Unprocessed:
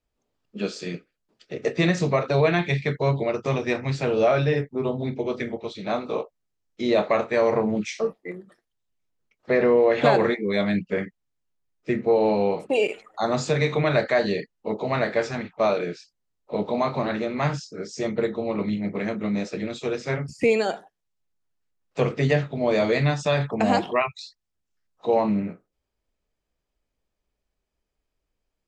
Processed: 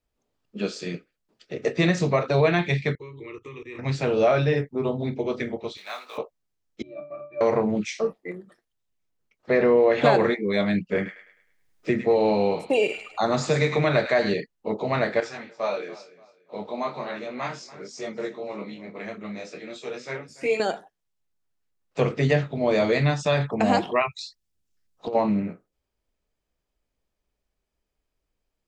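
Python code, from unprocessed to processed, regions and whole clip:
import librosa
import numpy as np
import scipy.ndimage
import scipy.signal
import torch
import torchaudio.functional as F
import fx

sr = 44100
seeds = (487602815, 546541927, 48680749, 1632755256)

y = fx.chain(x, sr, fx.band_shelf(hz=680.0, db=-13.0, octaves=1.1),
    fx.level_steps(step_db=18),
    fx.fixed_phaser(hz=1000.0, stages=8), at=(2.95, 3.79))
y = fx.chain(y, sr, fx.law_mismatch(coded='mu'),
    fx.highpass(hz=1400.0, slope=12), at=(5.77, 6.18))
y = fx.chain(y, sr, fx.low_shelf(hz=120.0, db=-7.5),
    fx.octave_resonator(note='D', decay_s=0.36), at=(6.82, 7.41))
y = fx.chain(y, sr, fx.echo_wet_highpass(ms=104, feedback_pct=34, hz=1400.0, wet_db=-7.5),
    fx.band_squash(depth_pct=40), at=(10.95, 14.34))
y = fx.chain(y, sr, fx.highpass(hz=440.0, slope=6),
    fx.echo_feedback(ms=288, feedback_pct=29, wet_db=-18),
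    fx.detune_double(cents=13), at=(15.2, 20.6))
y = fx.chain(y, sr, fx.peak_eq(hz=1100.0, db=-7.5, octaves=2.5),
    fx.over_compress(threshold_db=-27.0, ratio=-0.5),
    fx.doppler_dist(depth_ms=0.31), at=(24.12, 25.15))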